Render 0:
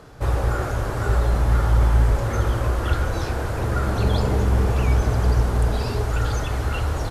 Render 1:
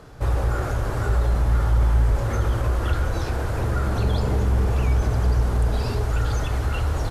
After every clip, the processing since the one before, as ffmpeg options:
-filter_complex "[0:a]lowshelf=f=110:g=4,asplit=2[a][b];[b]alimiter=limit=-15.5dB:level=0:latency=1,volume=2dB[c];[a][c]amix=inputs=2:normalize=0,volume=-8dB"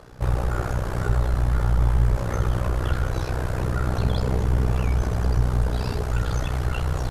-af "tremolo=f=62:d=0.857,volume=2.5dB"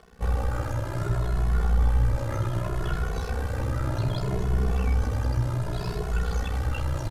-filter_complex "[0:a]areverse,acompressor=mode=upward:threshold=-29dB:ratio=2.5,areverse,aeval=exprs='sgn(val(0))*max(abs(val(0))-0.00447,0)':c=same,asplit=2[a][b];[b]adelay=2.3,afreqshift=0.65[c];[a][c]amix=inputs=2:normalize=1"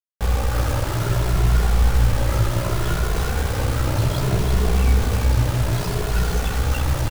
-af "acrusher=bits=5:mix=0:aa=0.000001,aecho=1:1:342:0.562,volume=5dB"

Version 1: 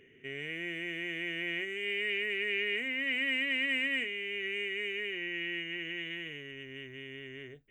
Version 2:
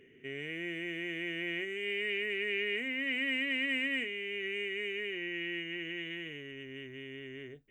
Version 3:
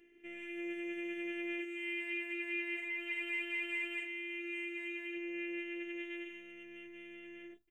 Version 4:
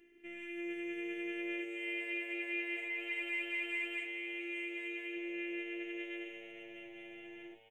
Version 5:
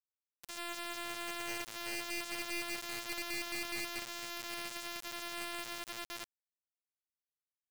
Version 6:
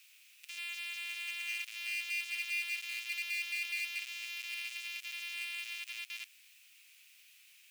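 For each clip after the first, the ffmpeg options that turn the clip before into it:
-af "equalizer=f=280:t=o:w=1.7:g=4.5,volume=-2dB"
-af "aecho=1:1:5.9:0.34,afftfilt=real='hypot(re,im)*cos(PI*b)':imag='0':win_size=512:overlap=0.75,volume=-1.5dB"
-filter_complex "[0:a]asplit=6[a][b][c][d][e][f];[b]adelay=434,afreqshift=110,volume=-15dB[g];[c]adelay=868,afreqshift=220,volume=-20.2dB[h];[d]adelay=1302,afreqshift=330,volume=-25.4dB[i];[e]adelay=1736,afreqshift=440,volume=-30.6dB[j];[f]adelay=2170,afreqshift=550,volume=-35.8dB[k];[a][g][h][i][j][k]amix=inputs=6:normalize=0"
-af "acrusher=bits=3:dc=4:mix=0:aa=0.000001"
-af "aeval=exprs='val(0)+0.5*0.00473*sgn(val(0))':c=same,highpass=f=2.5k:t=q:w=5,volume=-5.5dB"

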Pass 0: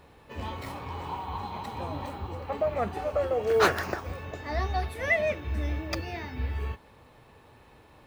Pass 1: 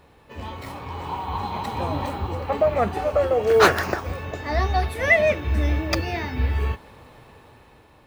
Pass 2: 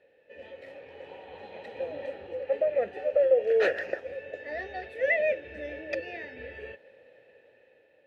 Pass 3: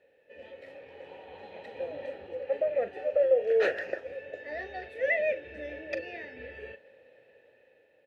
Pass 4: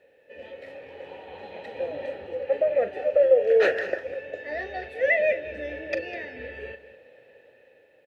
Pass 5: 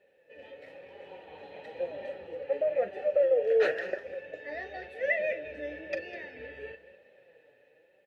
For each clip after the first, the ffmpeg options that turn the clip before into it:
-af "dynaudnorm=f=480:g=5:m=8dB,volume=1dB"
-filter_complex "[0:a]asplit=3[a][b][c];[a]bandpass=f=530:t=q:w=8,volume=0dB[d];[b]bandpass=f=1.84k:t=q:w=8,volume=-6dB[e];[c]bandpass=f=2.48k:t=q:w=8,volume=-9dB[f];[d][e][f]amix=inputs=3:normalize=0,volume=2dB"
-filter_complex "[0:a]asplit=2[a][b];[b]adelay=40,volume=-13.5dB[c];[a][c]amix=inputs=2:normalize=0,volume=-2dB"
-af "aecho=1:1:202:0.178,volume=5.5dB"
-af "flanger=delay=5:depth=2:regen=45:speed=0.99:shape=sinusoidal,volume=-2dB"

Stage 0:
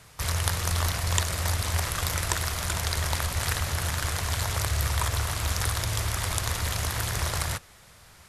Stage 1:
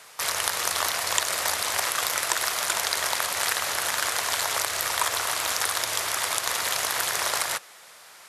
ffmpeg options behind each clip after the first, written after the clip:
-filter_complex "[0:a]highpass=500,asplit=2[a][b];[b]alimiter=limit=-15.5dB:level=0:latency=1:release=123,volume=-0.5dB[c];[a][c]amix=inputs=2:normalize=0"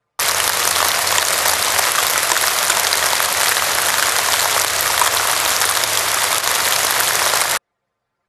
-af "apsyclip=12dB,anlmdn=3980,volume=-1.5dB"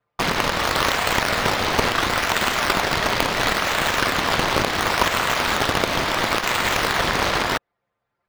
-filter_complex "[0:a]aeval=exprs='(mod(1.5*val(0)+1,2)-1)/1.5':c=same,acrossover=split=4900[a][b];[b]acrusher=samples=16:mix=1:aa=0.000001:lfo=1:lforange=16:lforate=0.72[c];[a][c]amix=inputs=2:normalize=0,volume=-3.5dB"

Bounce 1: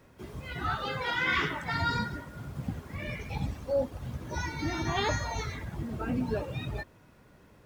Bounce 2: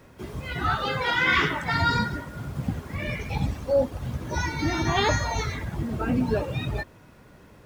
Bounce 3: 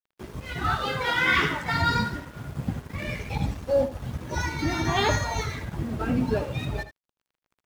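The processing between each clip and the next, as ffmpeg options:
-af "equalizer=f=16k:t=o:w=0.24:g=-2,volume=6.5dB"
-af "aeval=exprs='sgn(val(0))*max(abs(val(0))-0.0075,0)':c=same,aecho=1:1:78:0.237"

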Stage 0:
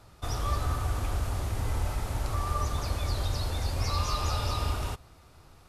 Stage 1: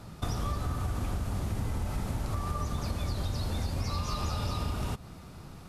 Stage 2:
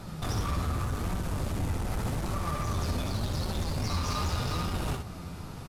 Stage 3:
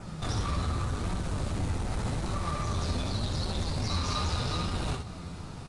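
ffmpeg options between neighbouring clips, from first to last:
-af "equalizer=f=190:t=o:w=1.1:g=12.5,acompressor=threshold=-34dB:ratio=6,volume=5dB"
-filter_complex "[0:a]volume=33dB,asoftclip=hard,volume=-33dB,asplit=2[a][b];[b]aecho=0:1:63|75:0.473|0.299[c];[a][c]amix=inputs=2:normalize=0,flanger=delay=5.2:depth=6.5:regen=62:speed=0.85:shape=sinusoidal,volume=9dB"
-af "adynamicequalizer=threshold=0.00126:dfrequency=4000:dqfactor=5.9:tfrequency=4000:tqfactor=5.9:attack=5:release=100:ratio=0.375:range=3.5:mode=boostabove:tftype=bell,acrusher=bits=7:mode=log:mix=0:aa=0.000001" -ar 22050 -c:a aac -b:a 48k

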